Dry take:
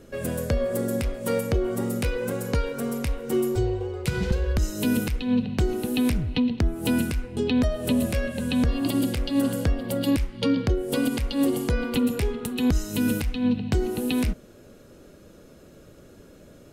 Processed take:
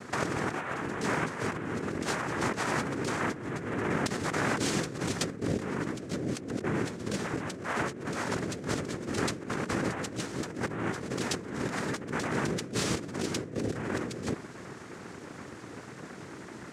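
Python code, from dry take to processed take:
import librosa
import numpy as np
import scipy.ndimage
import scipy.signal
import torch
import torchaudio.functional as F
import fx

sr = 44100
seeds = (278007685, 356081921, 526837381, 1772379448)

y = fx.low_shelf(x, sr, hz=160.0, db=-3.0, at=(3.44, 5.53))
y = fx.noise_vocoder(y, sr, seeds[0], bands=3)
y = fx.over_compress(y, sr, threshold_db=-34.0, ratio=-1.0)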